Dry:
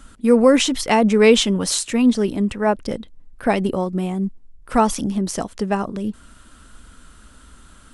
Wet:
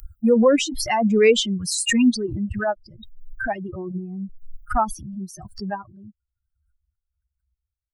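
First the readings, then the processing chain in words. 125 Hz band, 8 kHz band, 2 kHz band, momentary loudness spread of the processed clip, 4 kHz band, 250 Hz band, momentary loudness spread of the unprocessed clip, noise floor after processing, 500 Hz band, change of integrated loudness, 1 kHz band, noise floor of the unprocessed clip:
-5.0 dB, -3.0 dB, -1.0 dB, 18 LU, -3.0 dB, -4.0 dB, 13 LU, -84 dBFS, -3.0 dB, -2.5 dB, -4.0 dB, -47 dBFS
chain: per-bin expansion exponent 3; backwards sustainer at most 41 dB/s

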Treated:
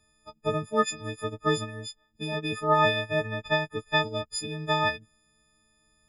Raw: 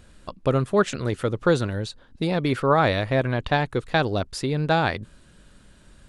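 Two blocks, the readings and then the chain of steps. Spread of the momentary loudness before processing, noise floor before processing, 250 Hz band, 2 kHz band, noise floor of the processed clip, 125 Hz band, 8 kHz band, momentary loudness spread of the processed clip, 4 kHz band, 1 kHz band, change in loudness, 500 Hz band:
9 LU, -53 dBFS, -8.5 dB, -1.5 dB, -68 dBFS, -9.5 dB, +1.5 dB, 12 LU, +1.0 dB, -2.5 dB, -4.0 dB, -5.5 dB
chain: frequency quantiser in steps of 6 st; high shelf 6000 Hz -4 dB; upward expander 1.5:1, over -38 dBFS; gain -5.5 dB

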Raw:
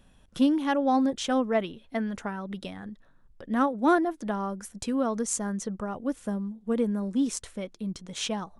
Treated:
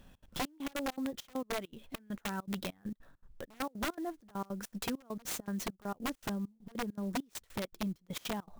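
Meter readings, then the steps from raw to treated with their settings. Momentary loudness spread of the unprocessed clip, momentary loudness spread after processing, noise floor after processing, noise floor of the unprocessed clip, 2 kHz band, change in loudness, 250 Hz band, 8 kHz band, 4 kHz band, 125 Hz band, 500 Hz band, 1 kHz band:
13 LU, 7 LU, -71 dBFS, -59 dBFS, -6.5 dB, -11.0 dB, -12.0 dB, -9.0 dB, -5.5 dB, -5.5 dB, -12.5 dB, -11.5 dB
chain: compressor 16:1, threshold -33 dBFS, peak gain reduction 16.5 dB; wrapped overs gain 29.5 dB; step gate "xx.xxx..x." 200 bpm -24 dB; clock jitter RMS 0.022 ms; gain +1 dB

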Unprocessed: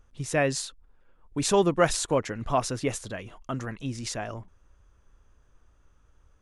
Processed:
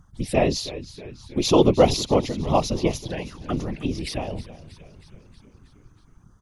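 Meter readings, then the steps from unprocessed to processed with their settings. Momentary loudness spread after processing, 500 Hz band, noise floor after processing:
18 LU, +5.5 dB, -56 dBFS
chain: envelope phaser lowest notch 400 Hz, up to 1600 Hz, full sweep at -29 dBFS; frequency-shifting echo 0.318 s, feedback 63%, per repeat -71 Hz, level -16 dB; whisperiser; gain +7 dB

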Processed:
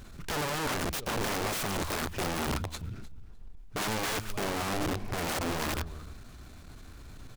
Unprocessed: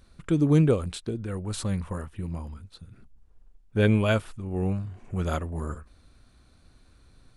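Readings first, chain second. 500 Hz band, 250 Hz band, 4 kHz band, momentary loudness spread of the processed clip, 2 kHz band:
-6.0 dB, -9.0 dB, +6.0 dB, 19 LU, +2.5 dB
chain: transient shaper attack -11 dB, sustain +1 dB; in parallel at -5 dB: soft clip -21.5 dBFS, distortion -11 dB; on the sum: dynamic EQ 250 Hz, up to -5 dB, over -36 dBFS, Q 1.5; compressor 16:1, threshold -30 dBFS, peak gain reduction 14 dB; notch 520 Hz, Q 12; on a send: feedback echo 0.303 s, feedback 15%, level -17.5 dB; on the sum: wrapped overs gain 33 dB; noise-modulated delay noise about 2700 Hz, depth 0.04 ms; gain +6.5 dB

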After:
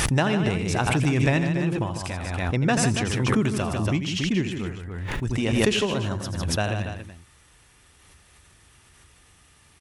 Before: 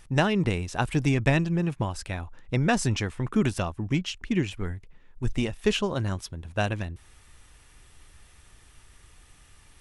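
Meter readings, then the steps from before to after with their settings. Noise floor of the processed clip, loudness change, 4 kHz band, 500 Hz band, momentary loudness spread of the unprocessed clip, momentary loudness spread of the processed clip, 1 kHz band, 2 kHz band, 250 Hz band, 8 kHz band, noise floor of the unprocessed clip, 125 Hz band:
-56 dBFS, +3.0 dB, +5.0 dB, +3.0 dB, 12 LU, 10 LU, +3.0 dB, +3.5 dB, +3.0 dB, +7.0 dB, -56 dBFS, +3.0 dB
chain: HPF 65 Hz 12 dB/oct; loudspeakers at several distances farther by 29 m -11 dB, 52 m -9 dB, 97 m -11 dB; backwards sustainer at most 26 dB/s

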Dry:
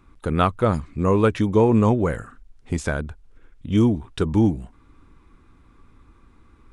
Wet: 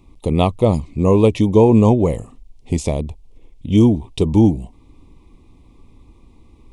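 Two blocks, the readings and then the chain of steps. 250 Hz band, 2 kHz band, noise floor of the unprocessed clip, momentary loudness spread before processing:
+5.5 dB, -5.0 dB, -54 dBFS, 13 LU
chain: Butterworth band-stop 1500 Hz, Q 1.1; gain +5.5 dB

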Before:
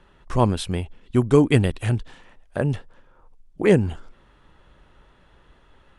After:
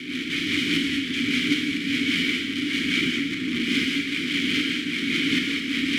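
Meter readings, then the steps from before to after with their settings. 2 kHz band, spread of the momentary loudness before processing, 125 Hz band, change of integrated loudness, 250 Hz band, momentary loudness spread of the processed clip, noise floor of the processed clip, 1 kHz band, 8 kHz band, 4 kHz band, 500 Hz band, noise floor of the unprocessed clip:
+12.0 dB, 13 LU, -14.5 dB, -1.5 dB, +1.0 dB, 3 LU, -30 dBFS, -12.0 dB, +5.0 dB, +16.0 dB, -14.5 dB, -57 dBFS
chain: per-bin compression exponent 0.2; thirty-one-band EQ 100 Hz +6 dB, 315 Hz -7 dB, 500 Hz -9 dB, 800 Hz +9 dB; in parallel at -1.5 dB: limiter -6.5 dBFS, peak gain reduction 11 dB; on the sum: wrapped overs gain 10 dB; tremolo saw up 1.3 Hz, depth 70%; Butterworth band-stop 660 Hz, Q 0.93; de-hum 67.54 Hz, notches 28; rotary speaker horn 5 Hz; vowel filter i; non-linear reverb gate 0.25 s flat, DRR -1 dB; gain +7 dB

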